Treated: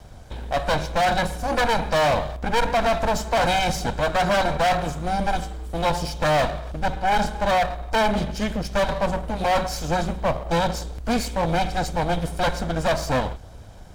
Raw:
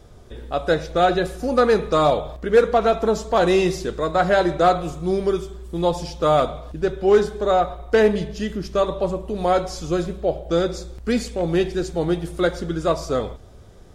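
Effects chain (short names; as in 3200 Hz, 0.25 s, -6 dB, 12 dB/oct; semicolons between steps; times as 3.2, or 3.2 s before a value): minimum comb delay 1.3 ms; overloaded stage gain 21 dB; gain +4 dB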